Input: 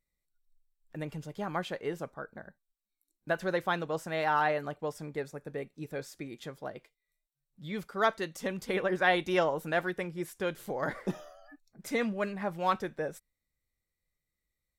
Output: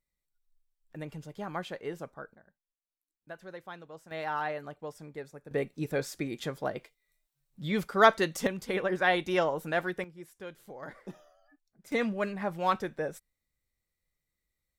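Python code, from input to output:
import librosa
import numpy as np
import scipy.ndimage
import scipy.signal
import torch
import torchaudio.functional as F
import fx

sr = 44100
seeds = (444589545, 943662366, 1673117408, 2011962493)

y = fx.gain(x, sr, db=fx.steps((0.0, -2.5), (2.35, -14.0), (4.11, -5.5), (5.51, 7.0), (8.47, 0.0), (10.04, -10.5), (11.92, 1.0)))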